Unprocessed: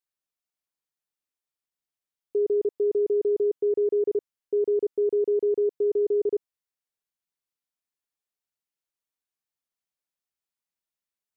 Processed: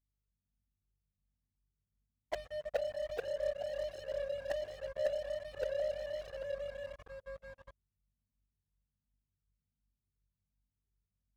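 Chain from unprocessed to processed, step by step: spectrum inverted on a logarithmic axis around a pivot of 500 Hz; tilt shelf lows -5 dB, about 660 Hz; small resonant body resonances 240/400 Hz, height 9 dB, ringing for 95 ms; inverted gate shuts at -34 dBFS, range -40 dB; 2.85–5.34 s: bass shelf 220 Hz +10 dB; hum 50 Hz, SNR 21 dB; ever faster or slower copies 282 ms, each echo -1 st, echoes 2; waveshaping leveller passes 5; Shepard-style flanger rising 1.3 Hz; trim +10.5 dB

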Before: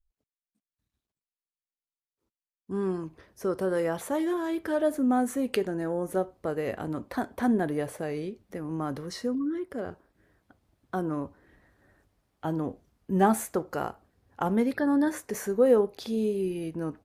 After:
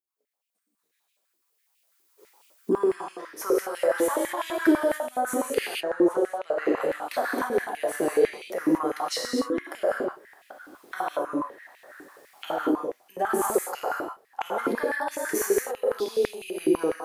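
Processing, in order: recorder AGC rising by 12 dB/s; 5.58–6.77 s: distance through air 73 m; gated-style reverb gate 270 ms flat, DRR -2.5 dB; peak limiter -13 dBFS, peak gain reduction 10 dB; treble shelf 7.6 kHz +9 dB; step-sequenced high-pass 12 Hz 330–2600 Hz; trim -6 dB

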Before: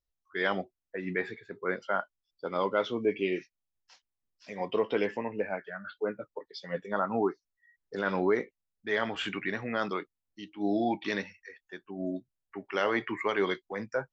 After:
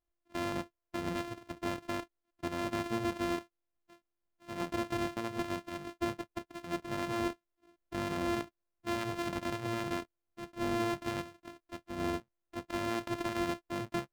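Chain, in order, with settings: sorted samples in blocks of 128 samples; treble shelf 5.1 kHz -10 dB; peak limiter -24.5 dBFS, peak gain reduction 9 dB

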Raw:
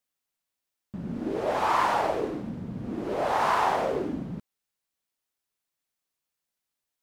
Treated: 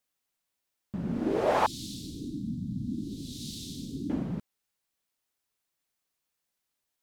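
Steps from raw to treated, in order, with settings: 1.66–4.10 s: Chebyshev band-stop 280–3700 Hz, order 4; trim +2 dB

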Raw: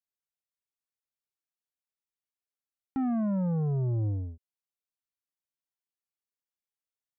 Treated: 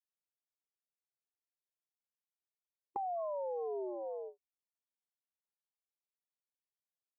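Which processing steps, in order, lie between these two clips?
brick-wall FIR band-pass 360–1100 Hz; compression 6:1, threshold -51 dBFS, peak gain reduction 11.5 dB; gate with hold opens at -47 dBFS; trim +14 dB

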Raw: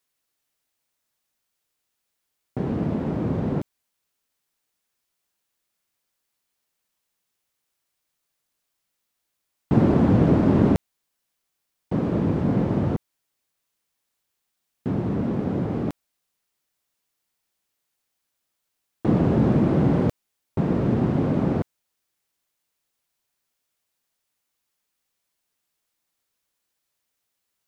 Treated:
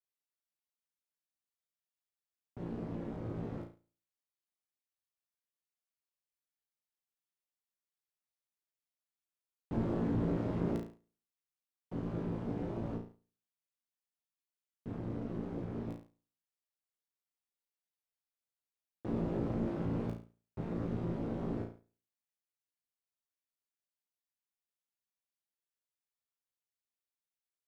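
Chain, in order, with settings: feedback comb 57 Hz, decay 0.43 s, harmonics all, mix 100%; waveshaping leveller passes 1; AM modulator 200 Hz, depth 50%; trim -7 dB

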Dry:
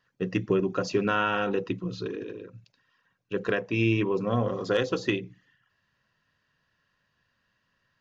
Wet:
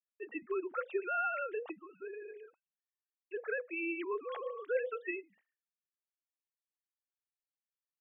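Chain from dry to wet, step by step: formants replaced by sine waves; expander -49 dBFS; three-band isolator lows -18 dB, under 550 Hz, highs -13 dB, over 2.7 kHz; band-stop 1 kHz, Q 12; trim -3 dB

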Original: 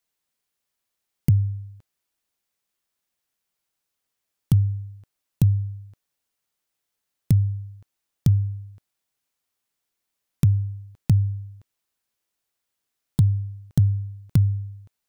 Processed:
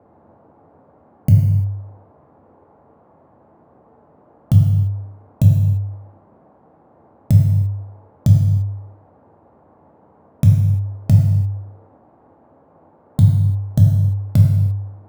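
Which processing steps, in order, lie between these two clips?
local Wiener filter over 15 samples; peaking EQ 630 Hz +14 dB 0.27 oct; band noise 72–890 Hz -56 dBFS; dynamic bell 140 Hz, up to +4 dB, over -31 dBFS, Q 0.92; gated-style reverb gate 370 ms falling, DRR -1 dB; trim +1 dB

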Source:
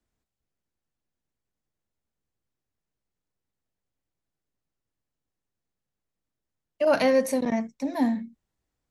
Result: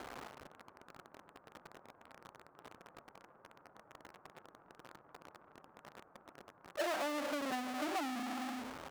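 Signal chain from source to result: feedback delay 111 ms, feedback 49%, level -19.5 dB; in parallel at -6.5 dB: hard clipper -24 dBFS, distortion -8 dB; on the sum: formant-preserving pitch shift +2 st; steep low-pass 1.4 kHz 48 dB/octave; power-law waveshaper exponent 0.35; high-pass 1.1 kHz 6 dB/octave; compression 6:1, threshold -32 dBFS, peak gain reduction 15.5 dB; trim -2.5 dB

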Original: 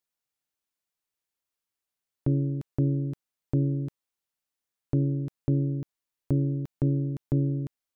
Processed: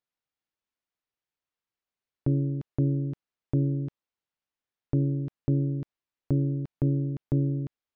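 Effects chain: distance through air 150 m

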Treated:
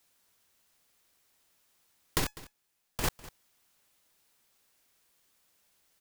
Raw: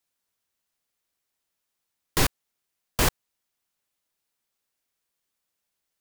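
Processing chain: compressor with a negative ratio -29 dBFS, ratio -1; 2.24–3.04 s: feedback comb 840 Hz, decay 0.16 s, harmonics all, mix 60%; on a send: delay 201 ms -18.5 dB; on the sum: trim +2 dB

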